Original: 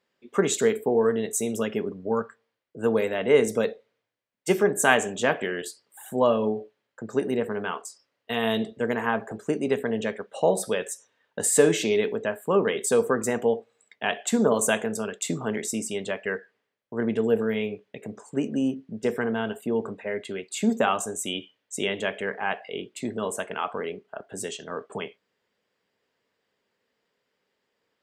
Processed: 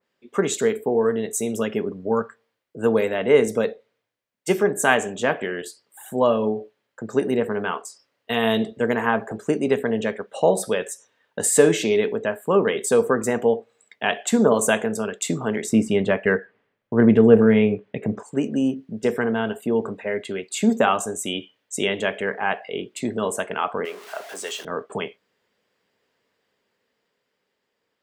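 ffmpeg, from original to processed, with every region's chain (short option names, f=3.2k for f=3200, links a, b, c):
-filter_complex "[0:a]asettb=1/sr,asplit=3[a][b][c];[a]atrim=end=15.694[d];[b]atrim=start=15.69:end=18.23,asetpts=PTS-STARTPTS,afade=t=in:d=0.004:c=qsin,afade=t=out:st=2.536:d=0.004:c=qsin,bass=f=250:g=6,treble=f=4k:g=-15,acontrast=42[e];[c]atrim=start=18.226[f];[d][e]acrossfade=d=0.004:c1=hsin:c2=qsin[g];[g][f]acrossfade=d=0.004:c1=qsin:c2=hsin,asettb=1/sr,asplit=3[h][i][j];[h]atrim=end=23.854[k];[i]atrim=start=23.85:end=24.65,asetpts=PTS-STARTPTS,afade=t=in:d=0.004:c=qsin,afade=t=out:st=0.796:d=0.004:c=qsin,aeval=exprs='val(0)+0.5*0.0119*sgn(val(0))':c=same,acrossover=split=5900[l][m];[m]acompressor=threshold=-41dB:ratio=4:attack=1:release=60[n];[l][n]amix=inputs=2:normalize=0,highpass=580[o];[j]atrim=start=24.646[p];[k][o]acrossfade=d=0.004:c1=hsin:c2=qsin[q];[q][p]acrossfade=d=0.004:c1=qsin:c2=hsin,dynaudnorm=f=290:g=11:m=4dB,adynamicequalizer=threshold=0.0126:dfrequency=2600:dqfactor=0.7:tfrequency=2600:tqfactor=0.7:attack=5:release=100:ratio=0.375:range=2:mode=cutabove:tftype=highshelf,volume=1dB"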